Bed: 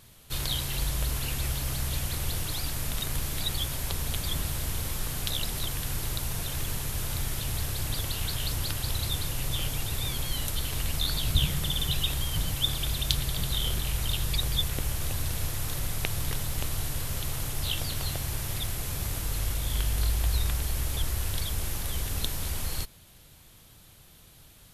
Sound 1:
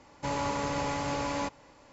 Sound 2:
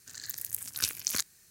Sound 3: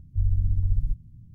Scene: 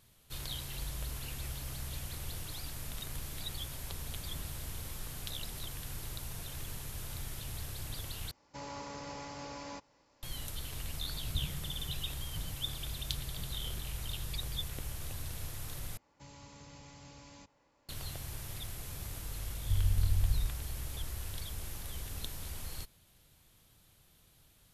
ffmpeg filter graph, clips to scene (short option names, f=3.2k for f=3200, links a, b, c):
-filter_complex "[1:a]asplit=2[a][b];[0:a]volume=-10.5dB[c];[a]equalizer=f=5.2k:t=o:w=0.65:g=7[d];[b]acrossover=split=210|2800[e][f][g];[f]acompressor=threshold=-58dB:ratio=2:attack=32:release=30:knee=2.83:detection=peak[h];[e][h][g]amix=inputs=3:normalize=0[i];[c]asplit=3[j][k][l];[j]atrim=end=8.314[m];[d]atrim=end=1.92,asetpts=PTS-STARTPTS,volume=-13dB[n];[k]atrim=start=10.226:end=15.974[o];[i]atrim=end=1.92,asetpts=PTS-STARTPTS,volume=-15dB[p];[l]atrim=start=17.886[q];[3:a]atrim=end=1.34,asetpts=PTS-STARTPTS,volume=-6.5dB,afade=t=in:d=0.004:c=hsin,afade=t=out:st=1.336:d=0.004:c=hsin,adelay=19530[r];[m][n]acrossfade=d=0.004:c1=hsin:c2=hsin[s];[s][o]acrossfade=d=0.004:c1=hsin:c2=hsin[t];[t][p]acrossfade=d=0.004:c1=hsin:c2=hsin[u];[u][q]acrossfade=d=0.004:c1=hsin:c2=hsin[v];[v][r]amix=inputs=2:normalize=0"